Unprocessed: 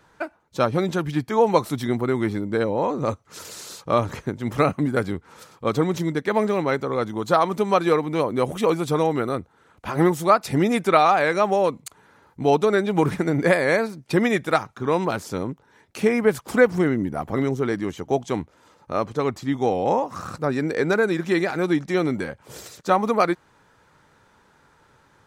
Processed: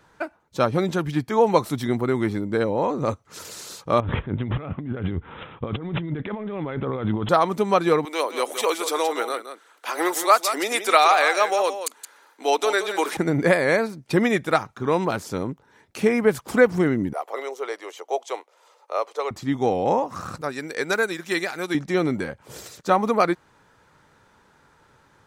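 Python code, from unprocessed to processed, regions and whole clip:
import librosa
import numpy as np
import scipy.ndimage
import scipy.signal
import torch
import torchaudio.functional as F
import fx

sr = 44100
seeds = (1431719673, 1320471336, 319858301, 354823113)

y = fx.chain(x, sr, fx.low_shelf(hz=140.0, db=11.0),
    fx.over_compress(threshold_db=-28.0, ratio=-1.0),
    fx.resample_bad(factor=6, down='none', up='filtered'), at=(4.0, 7.29))
y = fx.chain(y, sr, fx.bessel_highpass(hz=520.0, order=8),
    fx.high_shelf(hz=2500.0, db=10.0),
    fx.echo_single(ms=171, db=-10.0), at=(8.05, 13.17))
y = fx.chain(y, sr, fx.steep_highpass(hz=450.0, slope=36),
    fx.peak_eq(hz=1600.0, db=-6.5, octaves=0.32), at=(17.13, 19.31))
y = fx.chain(y, sr, fx.tilt_eq(slope=3.0),
    fx.upward_expand(threshold_db=-31.0, expansion=1.5), at=(20.41, 21.75))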